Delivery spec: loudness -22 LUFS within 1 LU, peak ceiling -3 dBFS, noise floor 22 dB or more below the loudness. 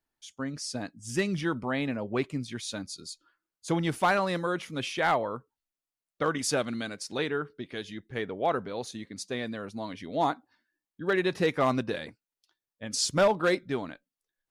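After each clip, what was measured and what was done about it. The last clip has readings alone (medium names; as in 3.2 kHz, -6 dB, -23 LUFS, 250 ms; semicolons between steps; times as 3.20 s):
clipped samples 0.2%; clipping level -17.0 dBFS; loudness -30.5 LUFS; peak level -17.0 dBFS; loudness target -22.0 LUFS
-> clip repair -17 dBFS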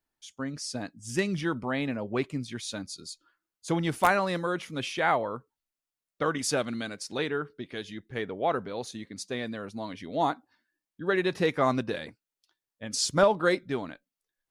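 clipped samples 0.0%; loudness -30.0 LUFS; peak level -8.0 dBFS; loudness target -22.0 LUFS
-> trim +8 dB; peak limiter -3 dBFS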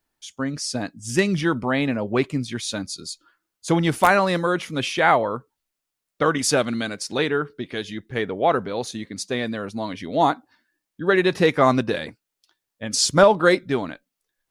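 loudness -22.0 LUFS; peak level -3.0 dBFS; noise floor -83 dBFS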